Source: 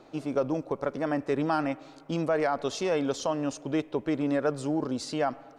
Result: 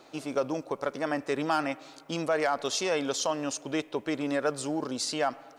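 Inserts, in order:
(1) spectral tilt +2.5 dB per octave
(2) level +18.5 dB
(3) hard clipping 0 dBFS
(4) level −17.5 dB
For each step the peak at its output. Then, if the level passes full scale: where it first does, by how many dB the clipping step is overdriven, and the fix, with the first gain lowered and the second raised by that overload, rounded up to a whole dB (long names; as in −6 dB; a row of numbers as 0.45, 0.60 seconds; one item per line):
−15.5, +3.0, 0.0, −17.5 dBFS
step 2, 3.0 dB
step 2 +15.5 dB, step 4 −14.5 dB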